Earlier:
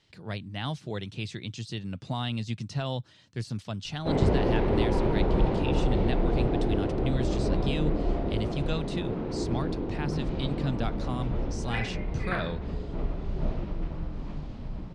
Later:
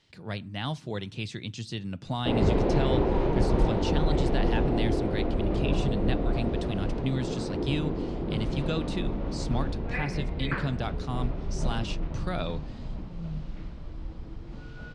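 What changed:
background: entry −1.80 s
reverb: on, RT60 0.50 s

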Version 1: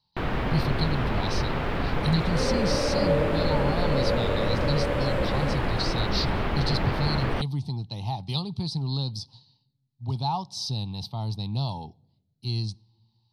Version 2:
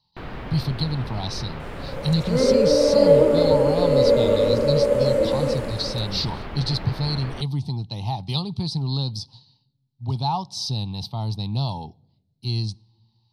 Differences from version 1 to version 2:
speech +3.5 dB
first sound −7.0 dB
second sound +11.0 dB

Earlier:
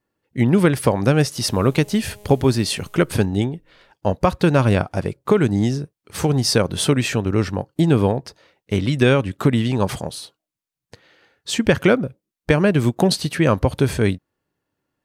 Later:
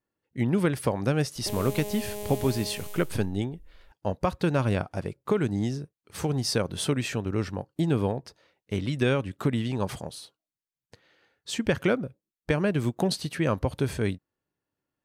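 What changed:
speech −9.0 dB
background +10.5 dB

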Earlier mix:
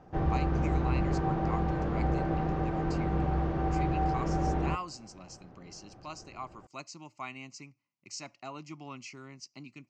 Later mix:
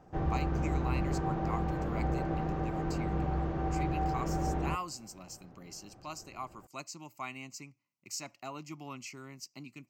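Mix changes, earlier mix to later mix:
background −3.0 dB
master: remove low-pass filter 6,500 Hz 24 dB per octave

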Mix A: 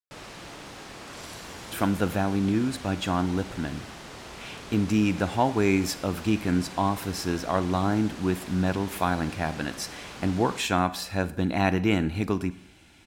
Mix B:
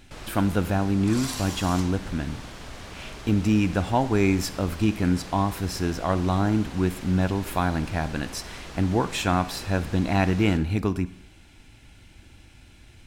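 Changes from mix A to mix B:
speech: entry −1.45 s
second sound +11.5 dB
master: remove high-pass filter 150 Hz 6 dB per octave

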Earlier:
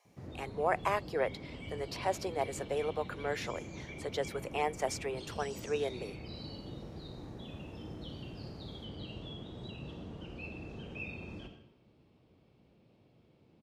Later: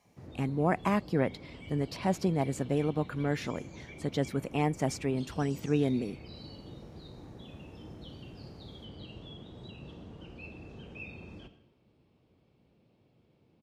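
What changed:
speech: remove Butterworth high-pass 410 Hz
background: send −6.5 dB

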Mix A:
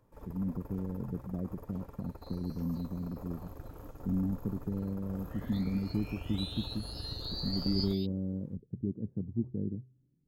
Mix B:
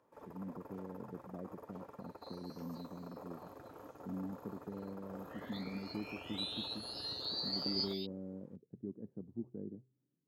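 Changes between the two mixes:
first sound: add tilt shelving filter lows +4 dB, about 1,300 Hz
master: add meter weighting curve A

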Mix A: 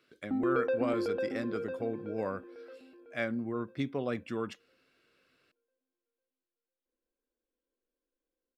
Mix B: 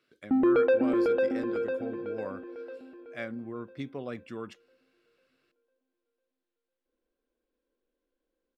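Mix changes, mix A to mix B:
speech −4.0 dB
background +7.5 dB

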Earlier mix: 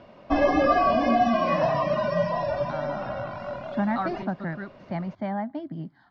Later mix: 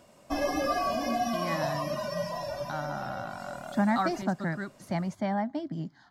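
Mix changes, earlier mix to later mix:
background −8.5 dB
master: remove Bessel low-pass filter 2,700 Hz, order 8

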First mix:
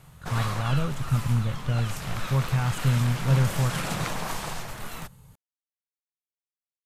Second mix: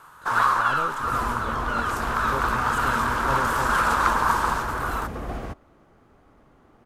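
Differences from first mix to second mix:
first sound: add flat-topped bell 1,200 Hz +15.5 dB 1.1 octaves
second sound: unmuted
master: add low shelf with overshoot 220 Hz −13 dB, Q 1.5

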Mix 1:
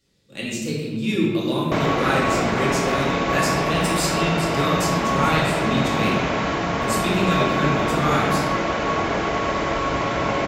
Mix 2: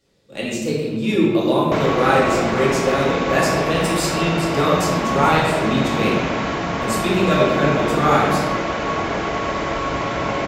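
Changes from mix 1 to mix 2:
speech: add parametric band 660 Hz +10 dB 1.9 octaves
first sound +7.0 dB

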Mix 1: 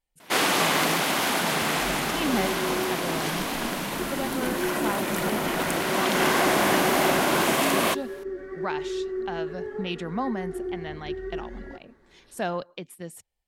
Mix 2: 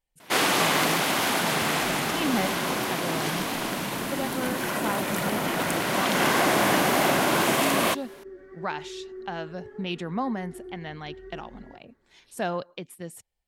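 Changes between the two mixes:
second sound −9.5 dB
master: add parametric band 120 Hz +8 dB 0.23 octaves

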